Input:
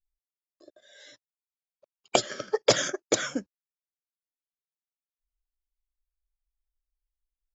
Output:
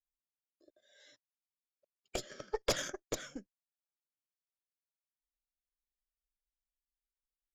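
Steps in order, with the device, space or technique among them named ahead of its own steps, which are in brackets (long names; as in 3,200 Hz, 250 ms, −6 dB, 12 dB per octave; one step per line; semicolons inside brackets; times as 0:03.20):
overdriven rotary cabinet (tube saturation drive 17 dB, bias 0.8; rotating-speaker cabinet horn 0.65 Hz)
level −5.5 dB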